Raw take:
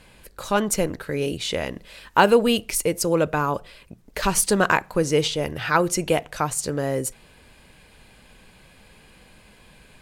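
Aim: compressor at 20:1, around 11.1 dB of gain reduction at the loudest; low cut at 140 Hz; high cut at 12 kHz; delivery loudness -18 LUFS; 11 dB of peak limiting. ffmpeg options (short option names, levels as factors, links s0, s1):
-af "highpass=140,lowpass=12000,acompressor=threshold=0.0891:ratio=20,volume=4.22,alimiter=limit=0.473:level=0:latency=1"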